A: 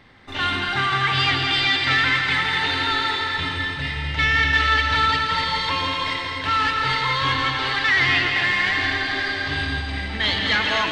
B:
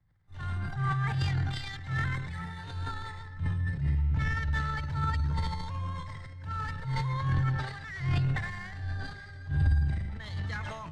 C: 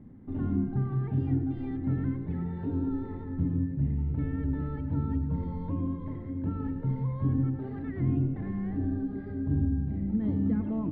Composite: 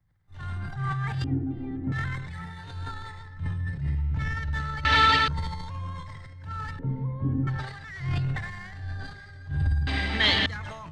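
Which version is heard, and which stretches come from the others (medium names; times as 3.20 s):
B
1.24–1.92 s: from C
4.85–5.28 s: from A
6.79–7.47 s: from C
9.87–10.46 s: from A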